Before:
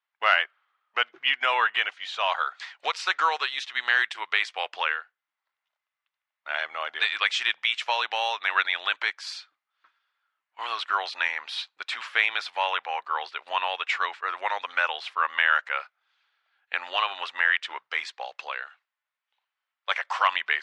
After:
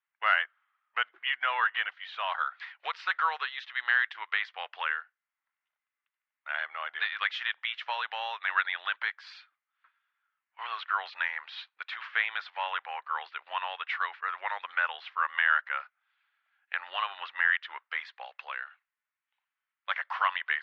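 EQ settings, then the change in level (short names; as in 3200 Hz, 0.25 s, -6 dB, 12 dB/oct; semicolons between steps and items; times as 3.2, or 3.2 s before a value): dynamic EQ 2400 Hz, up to -7 dB, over -41 dBFS, Q 4; band-pass 1900 Hz, Q 1; air absorption 190 m; 0.0 dB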